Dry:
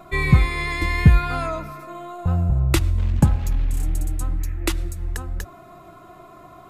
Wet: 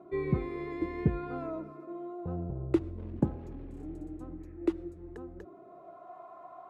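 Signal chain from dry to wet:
band-pass filter sweep 360 Hz → 790 Hz, 0:05.48–0:06.17

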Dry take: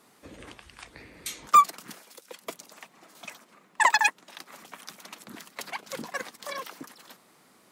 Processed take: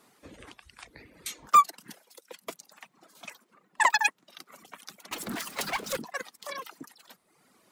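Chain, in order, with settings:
reverb reduction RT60 0.99 s
0:05.11–0:05.97: power curve on the samples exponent 0.5
level −1.5 dB

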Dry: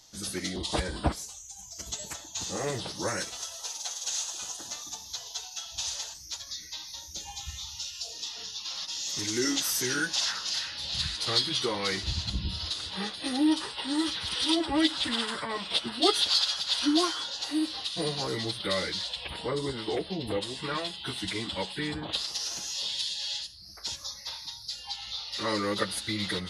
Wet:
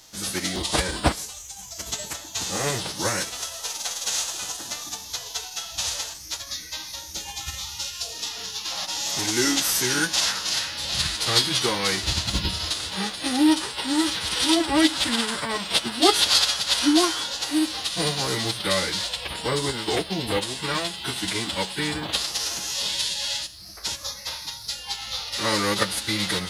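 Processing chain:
spectral envelope flattened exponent 0.6
0:08.72–0:09.31: parametric band 750 Hz +9 dB 0.61 octaves
level +6 dB

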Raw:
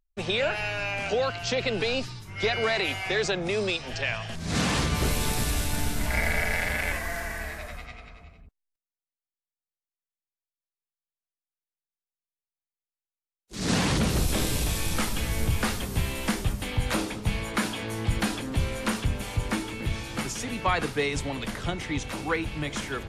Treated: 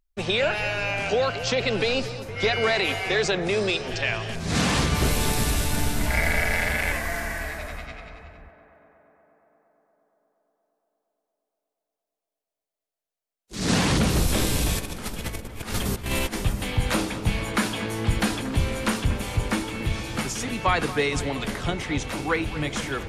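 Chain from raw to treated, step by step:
0:14.78–0:16.35: compressor whose output falls as the input rises −32 dBFS, ratio −0.5
on a send: tape delay 234 ms, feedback 82%, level −12.5 dB, low-pass 2,200 Hz
on the sum: level +3 dB

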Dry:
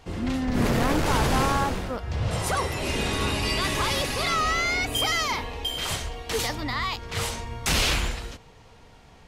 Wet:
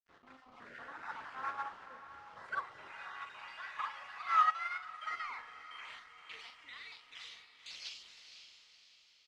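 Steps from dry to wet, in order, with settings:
time-frequency cells dropped at random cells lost 31%
0:02.89–0:05.11: high-pass filter 710 Hz 24 dB per octave
brickwall limiter −20 dBFS, peak gain reduction 7.5 dB
band-pass filter sweep 1,400 Hz → 7,300 Hz, 0:04.99–0:08.99
dead-zone distortion −52.5 dBFS
high-frequency loss of the air 81 metres
double-tracking delay 42 ms −7 dB
feedback delay with all-pass diffusion 511 ms, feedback 47%, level −8 dB
expander for the loud parts 2.5 to 1, over −37 dBFS
level +5.5 dB

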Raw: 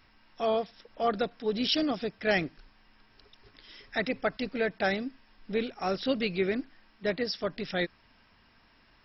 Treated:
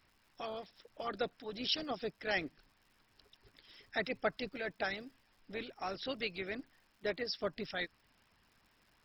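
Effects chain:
harmonic and percussive parts rebalanced harmonic −12 dB
surface crackle 170 per second −54 dBFS
level −4.5 dB

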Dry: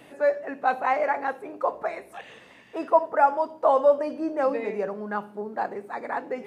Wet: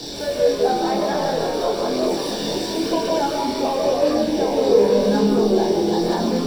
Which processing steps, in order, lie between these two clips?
converter with a step at zero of −32.5 dBFS
downward compressor 2 to 1, threshold −23 dBFS, peak gain reduction 6.5 dB
graphic EQ with 10 bands 125 Hz −7 dB, 250 Hz −6 dB, 1,000 Hz −9 dB, 2,000 Hz −9 dB, 4,000 Hz +12 dB
delay with pitch and tempo change per echo 122 ms, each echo −3 semitones, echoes 3
flutter between parallel walls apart 6.7 metres, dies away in 0.28 s
convolution reverb RT60 0.70 s, pre-delay 138 ms, DRR 2.5 dB
multi-voice chorus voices 2, 0.49 Hz, delay 24 ms, depth 1 ms

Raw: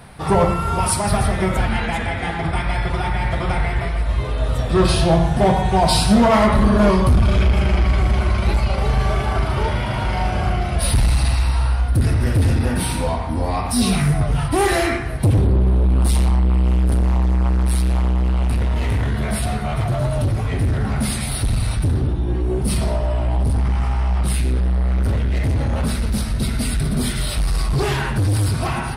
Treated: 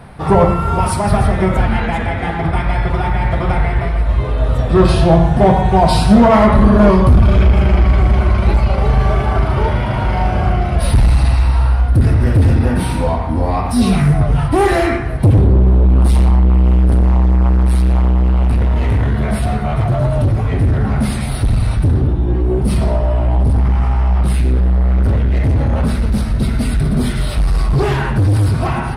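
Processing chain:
high-shelf EQ 2,700 Hz −11.5 dB
level +5.5 dB

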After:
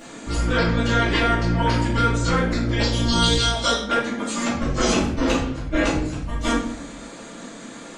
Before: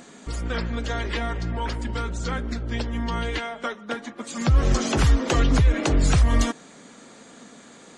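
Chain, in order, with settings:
0:02.83–0:03.79: high shelf with overshoot 3,000 Hz +13 dB, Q 3
compressor whose output falls as the input rises −24 dBFS, ratio −0.5
rectangular room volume 120 cubic metres, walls mixed, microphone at 2.5 metres
level −4.5 dB

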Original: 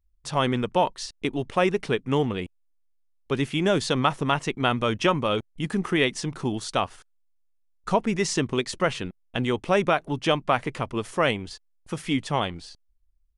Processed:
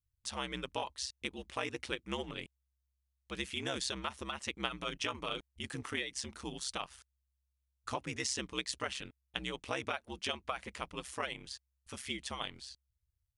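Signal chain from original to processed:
tilt shelving filter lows −7 dB, about 1,300 Hz
downward compressor 5 to 1, threshold −22 dBFS, peak gain reduction 7 dB
ring modulation 66 Hz
level −7.5 dB

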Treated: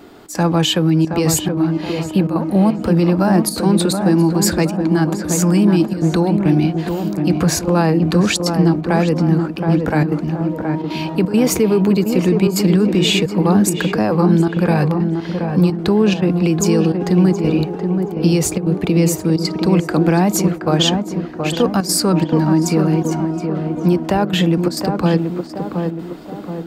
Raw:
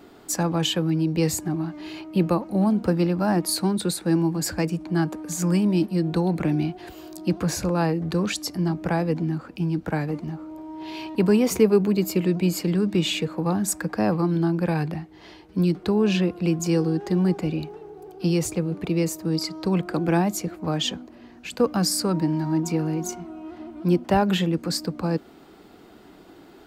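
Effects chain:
automatic gain control gain up to 3 dB
brickwall limiter −13.5 dBFS, peak gain reduction 9 dB
gate pattern "xxx.xxxxxxxx.x" 172 BPM −12 dB
tape delay 723 ms, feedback 59%, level −3 dB, low-pass 1,200 Hz
level +7 dB

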